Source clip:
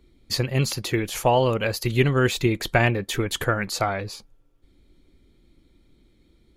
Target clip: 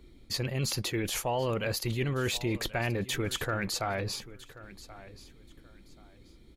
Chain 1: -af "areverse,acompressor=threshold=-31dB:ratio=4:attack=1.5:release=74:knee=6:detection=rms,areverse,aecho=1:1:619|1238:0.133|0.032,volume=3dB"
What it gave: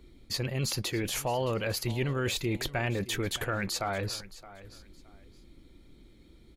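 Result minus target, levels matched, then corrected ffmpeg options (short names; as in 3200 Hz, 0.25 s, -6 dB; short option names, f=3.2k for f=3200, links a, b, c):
echo 0.462 s early
-af "areverse,acompressor=threshold=-31dB:ratio=4:attack=1.5:release=74:knee=6:detection=rms,areverse,aecho=1:1:1081|2162:0.133|0.032,volume=3dB"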